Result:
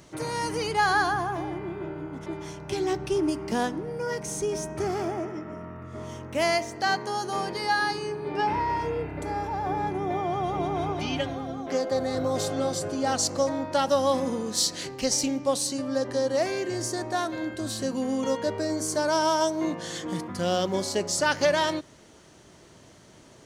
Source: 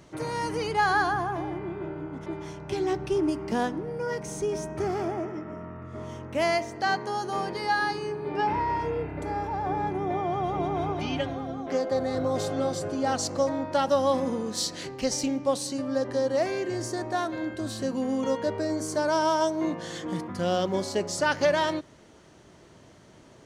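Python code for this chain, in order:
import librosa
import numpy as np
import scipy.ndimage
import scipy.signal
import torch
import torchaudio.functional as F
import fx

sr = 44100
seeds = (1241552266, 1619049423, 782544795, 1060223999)

y = fx.high_shelf(x, sr, hz=3900.0, db=7.5)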